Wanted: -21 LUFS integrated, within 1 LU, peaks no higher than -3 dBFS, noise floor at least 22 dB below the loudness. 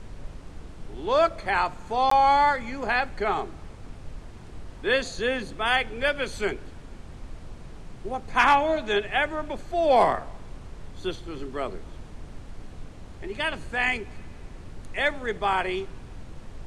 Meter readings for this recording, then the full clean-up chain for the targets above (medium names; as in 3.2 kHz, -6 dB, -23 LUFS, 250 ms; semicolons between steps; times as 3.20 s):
dropouts 1; longest dropout 14 ms; noise floor -43 dBFS; noise floor target -47 dBFS; loudness -25.0 LUFS; peak level -6.0 dBFS; loudness target -21.0 LUFS
-> interpolate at 2.10 s, 14 ms; noise print and reduce 6 dB; trim +4 dB; peak limiter -3 dBFS